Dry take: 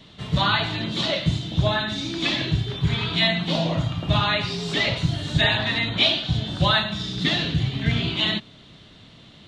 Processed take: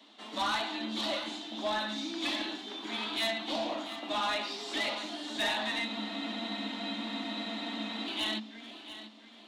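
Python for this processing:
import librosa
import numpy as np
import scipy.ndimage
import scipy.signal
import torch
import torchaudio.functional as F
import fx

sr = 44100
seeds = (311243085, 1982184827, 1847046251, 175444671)

p1 = scipy.signal.sosfilt(scipy.signal.cheby1(6, 9, 210.0, 'highpass', fs=sr, output='sos'), x)
p2 = fx.high_shelf(p1, sr, hz=2500.0, db=5.5)
p3 = 10.0 ** (-22.5 / 20.0) * np.tanh(p2 / 10.0 ** (-22.5 / 20.0))
p4 = p3 + fx.echo_feedback(p3, sr, ms=688, feedback_pct=37, wet_db=-13, dry=0)
p5 = fx.spec_freeze(p4, sr, seeds[0], at_s=5.89, hold_s=2.18)
y = F.gain(torch.from_numpy(p5), -3.0).numpy()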